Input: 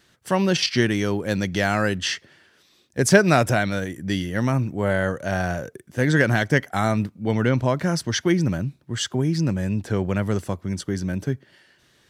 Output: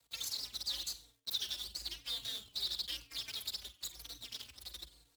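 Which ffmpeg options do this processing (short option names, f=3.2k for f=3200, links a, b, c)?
-filter_complex "[0:a]highpass=f=1.5k:w=0.5412,highpass=f=1.5k:w=1.3066,highshelf=f=2.7k:t=q:w=1.5:g=-9.5,acompressor=threshold=-33dB:ratio=2.5,acrusher=bits=7:dc=4:mix=0:aa=0.000001,afreqshift=23,asplit=6[a][b][c][d][e][f];[b]adelay=108,afreqshift=-72,volume=-13dB[g];[c]adelay=216,afreqshift=-144,volume=-19.7dB[h];[d]adelay=324,afreqshift=-216,volume=-26.5dB[i];[e]adelay=432,afreqshift=-288,volume=-33.2dB[j];[f]adelay=540,afreqshift=-360,volume=-40dB[k];[a][g][h][i][j][k]amix=inputs=6:normalize=0,asetrate=103194,aresample=44100,asplit=2[l][m];[m]adelay=3.8,afreqshift=-0.99[n];[l][n]amix=inputs=2:normalize=1,volume=-2dB"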